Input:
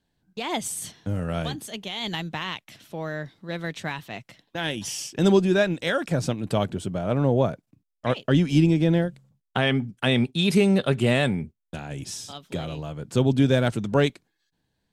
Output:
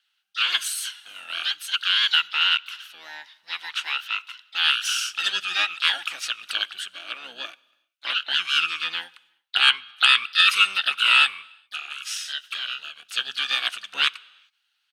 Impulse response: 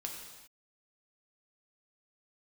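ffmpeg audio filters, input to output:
-filter_complex "[0:a]highpass=f=2.8k:t=q:w=6.5,asplit=4[a][b][c][d];[b]asetrate=22050,aresample=44100,atempo=2,volume=-7dB[e];[c]asetrate=52444,aresample=44100,atempo=0.840896,volume=-17dB[f];[d]asetrate=58866,aresample=44100,atempo=0.749154,volume=-13dB[g];[a][e][f][g]amix=inputs=4:normalize=0,bandreject=f=7.5k:w=12,asplit=2[h][i];[1:a]atrim=start_sample=2205[j];[i][j]afir=irnorm=-1:irlink=0,volume=-18.5dB[k];[h][k]amix=inputs=2:normalize=0,aeval=exprs='1.06*sin(PI/2*1.41*val(0)/1.06)':c=same,volume=-6dB"

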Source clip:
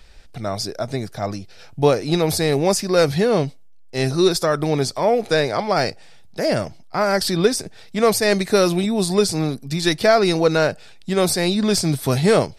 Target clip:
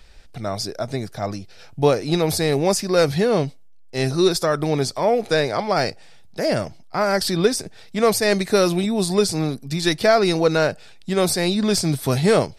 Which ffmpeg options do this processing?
-af "volume=-1dB"

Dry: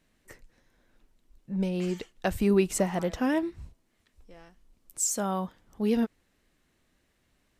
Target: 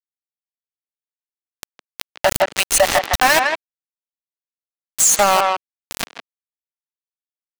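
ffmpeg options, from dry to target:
-filter_complex "[0:a]afftfilt=real='re*pow(10,11/40*sin(2*PI*(1.7*log(max(b,1)*sr/1024/100)/log(2)-(-0.39)*(pts-256)/sr)))':imag='im*pow(10,11/40*sin(2*PI*(1.7*log(max(b,1)*sr/1024/100)/log(2)-(-0.39)*(pts-256)/sr)))':win_size=1024:overlap=0.75,afftfilt=real='re*(1-between(b*sr/4096,110,570))':imag='im*(1-between(b*sr/4096,110,570))':win_size=4096:overlap=0.75,aeval=exprs='val(0)*gte(abs(val(0)),0.0316)':c=same,asplit=2[a][b];[b]adelay=160,highpass=300,lowpass=3.4k,asoftclip=type=hard:threshold=-24dB,volume=-8dB[c];[a][c]amix=inputs=2:normalize=0,alimiter=level_in=26.5dB:limit=-1dB:release=50:level=0:latency=1,volume=-3dB"

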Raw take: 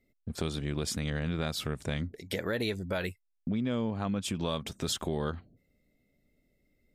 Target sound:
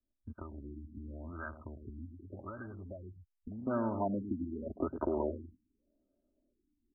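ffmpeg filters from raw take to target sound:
-filter_complex "[0:a]aemphasis=mode=production:type=75fm,aecho=1:1:3.2:0.96,asplit=2[a][b];[b]adelay=105,volume=-10dB,highshelf=f=4k:g=-2.36[c];[a][c]amix=inputs=2:normalize=0,acrossover=split=120|1100[d][e][f];[d]acompressor=threshold=-51dB:ratio=4[g];[e]acompressor=threshold=-44dB:ratio=4[h];[f]acompressor=threshold=-30dB:ratio=4[i];[g][h][i]amix=inputs=3:normalize=0,afwtdn=0.00794,asetnsamples=n=441:p=0,asendcmd='3.67 equalizer g 10',equalizer=f=460:t=o:w=2.5:g=-7.5,afftfilt=real='re*lt(b*sr/1024,330*pow(1700/330,0.5+0.5*sin(2*PI*0.85*pts/sr)))':imag='im*lt(b*sr/1024,330*pow(1700/330,0.5+0.5*sin(2*PI*0.85*pts/sr)))':win_size=1024:overlap=0.75,volume=2dB"

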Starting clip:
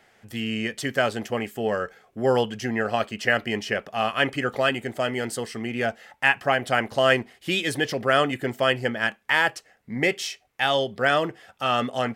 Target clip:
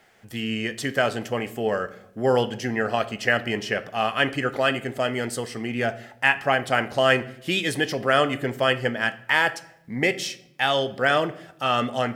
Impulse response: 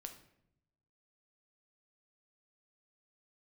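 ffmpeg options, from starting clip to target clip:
-filter_complex "[0:a]acrusher=bits=11:mix=0:aa=0.000001,asplit=2[a][b];[1:a]atrim=start_sample=2205[c];[b][c]afir=irnorm=-1:irlink=0,volume=3.5dB[d];[a][d]amix=inputs=2:normalize=0,volume=-4.5dB"

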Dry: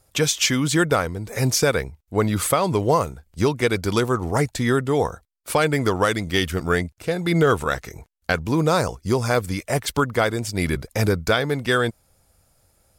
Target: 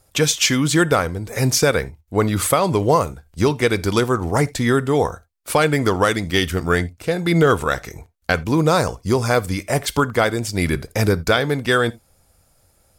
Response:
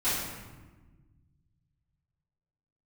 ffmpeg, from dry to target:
-filter_complex "[0:a]asplit=2[a][b];[1:a]atrim=start_sample=2205,atrim=end_sample=3969[c];[b][c]afir=irnorm=-1:irlink=0,volume=-26dB[d];[a][d]amix=inputs=2:normalize=0,volume=2.5dB"

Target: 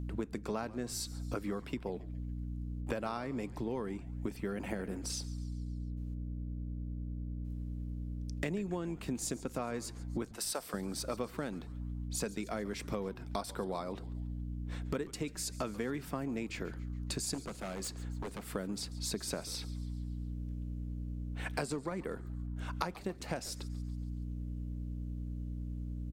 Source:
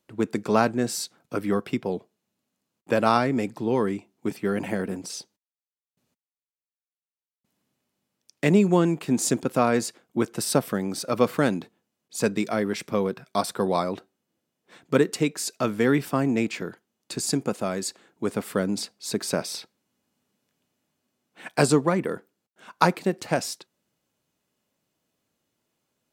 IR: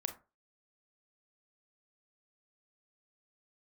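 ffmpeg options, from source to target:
-filter_complex "[0:a]aeval=exprs='val(0)+0.0126*(sin(2*PI*60*n/s)+sin(2*PI*2*60*n/s)/2+sin(2*PI*3*60*n/s)/3+sin(2*PI*4*60*n/s)/4+sin(2*PI*5*60*n/s)/5)':c=same,asettb=1/sr,asplit=3[a][b][c];[a]atrim=end=10.294[d];[b]atrim=start=10.29:end=10.74,asetpts=PTS-STARTPTS,afade=t=in:d=0.004:c=qsin,afade=t=out:st=0.446:d=0.004:c=qsin,highpass=610[e];[c]atrim=start=10.736[f];[d][e]acrossfade=d=0.004:c1=hsin:c2=qsin[g];[g][f]acrossfade=d=0.004:c1=qsin:c2=hsin,acompressor=threshold=-36dB:ratio=6,asettb=1/sr,asplit=3[h][i][j];[h]atrim=end=17.344[k];[i]atrim=start=17.34:end=18.55,asetpts=PTS-STARTPTS,afade=t=in:d=0.004:c=qsin,afade=t=out:st=1.206:d=0.004:c=qsin,aeval=exprs='0.0188*(abs(mod(val(0)/0.0188+3,4)-2)-1)':c=same[l];[j]atrim=start=18.546[m];[k][l]acrossfade=d=0.004:c1=hsin:c2=qsin[n];[n][m]acrossfade=d=0.004:c1=qsin:c2=hsin,asplit=6[o][p][q][r][s][t];[p]adelay=140,afreqshift=-130,volume=-18dB[u];[q]adelay=280,afreqshift=-260,volume=-23dB[v];[r]adelay=420,afreqshift=-390,volume=-28.1dB[w];[s]adelay=560,afreqshift=-520,volume=-33.1dB[x];[t]adelay=700,afreqshift=-650,volume=-38.1dB[y];[o][u][v][w][x][y]amix=inputs=6:normalize=0,volume=1dB"

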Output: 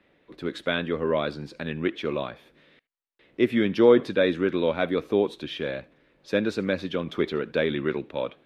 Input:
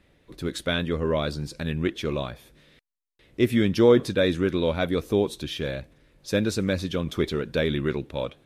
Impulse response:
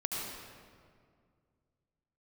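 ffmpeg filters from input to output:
-filter_complex "[0:a]acrossover=split=180 3700:gain=0.178 1 0.126[a][b][c];[a][b][c]amix=inputs=3:normalize=0,asplit=2[d][e];[1:a]atrim=start_sample=2205,atrim=end_sample=3528,lowshelf=f=410:g=-10.5[f];[e][f]afir=irnorm=-1:irlink=0,volume=-13dB[g];[d][g]amix=inputs=2:normalize=0"

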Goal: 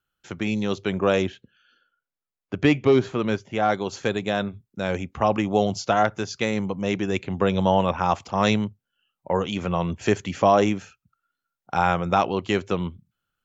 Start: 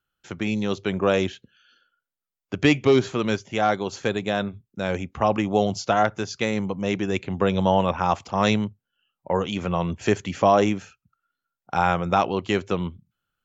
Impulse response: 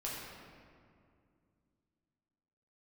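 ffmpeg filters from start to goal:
-filter_complex "[0:a]asettb=1/sr,asplit=3[a][b][c];[a]atrim=end=1.224[d];[b]atrim=start=1.22:end=3.7,asetpts=PTS-STARTPTS,afade=t=in:d=0.004:c=qsin,afade=t=out:st=2.476:d=0.004:c=qsin,highshelf=f=3.9k:g=-10.5[e];[c]atrim=start=3.696[f];[d][e]acrossfade=d=0.004:c1=hsin:c2=qsin[g];[g][f]acrossfade=d=0.004:c1=qsin:c2=hsin"

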